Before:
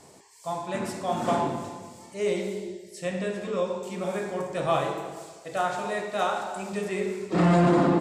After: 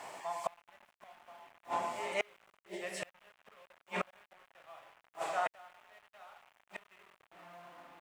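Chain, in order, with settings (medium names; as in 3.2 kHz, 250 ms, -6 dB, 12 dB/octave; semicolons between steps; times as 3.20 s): self-modulated delay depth 0.056 ms; high-pass 270 Hz 6 dB/octave; hum notches 50/100/150/200/250/300/350/400/450 Hz; pre-echo 216 ms -17 dB; inverted gate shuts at -27 dBFS, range -38 dB; bit crusher 11-bit; high-order bell 1.4 kHz +12.5 dB 2.7 oct; trim -2 dB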